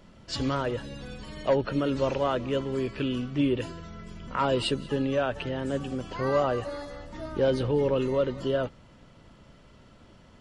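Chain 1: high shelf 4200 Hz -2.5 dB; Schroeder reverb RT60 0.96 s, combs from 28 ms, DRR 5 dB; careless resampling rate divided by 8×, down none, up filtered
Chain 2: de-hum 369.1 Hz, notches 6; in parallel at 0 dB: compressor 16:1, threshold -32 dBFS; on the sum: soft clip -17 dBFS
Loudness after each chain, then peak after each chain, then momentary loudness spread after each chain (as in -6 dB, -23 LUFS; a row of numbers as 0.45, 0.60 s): -27.5, -27.5 LUFS; -12.5, -17.5 dBFS; 14, 10 LU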